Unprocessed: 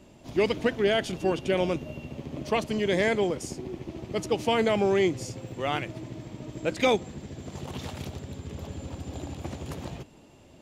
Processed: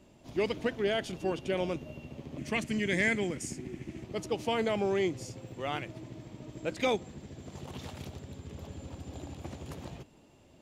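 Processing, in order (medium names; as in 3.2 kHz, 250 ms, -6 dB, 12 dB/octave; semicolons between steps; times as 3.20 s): 2.38–4.04 s: graphic EQ 125/250/500/1000/2000/4000/8000 Hz +3/+5/-5/-6/+10/-4/+8 dB; trim -6 dB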